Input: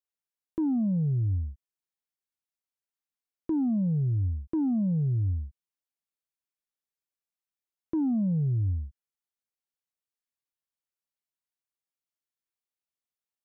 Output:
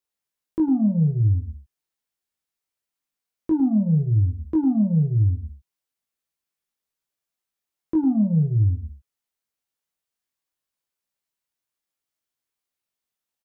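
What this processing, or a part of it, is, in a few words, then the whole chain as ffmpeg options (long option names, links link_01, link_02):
slapback doubling: -filter_complex "[0:a]asplit=3[link_01][link_02][link_03];[link_02]adelay=19,volume=-3dB[link_04];[link_03]adelay=105,volume=-11dB[link_05];[link_01][link_04][link_05]amix=inputs=3:normalize=0,volume=4.5dB"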